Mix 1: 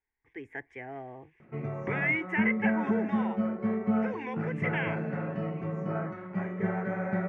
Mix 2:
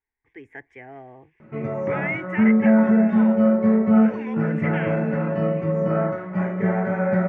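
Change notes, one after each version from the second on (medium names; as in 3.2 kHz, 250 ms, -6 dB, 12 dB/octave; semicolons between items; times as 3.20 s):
background +3.0 dB; reverb: on, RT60 0.55 s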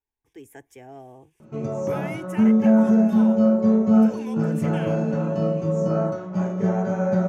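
master: remove resonant low-pass 2 kHz, resonance Q 6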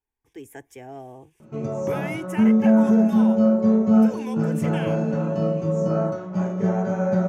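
speech +3.5 dB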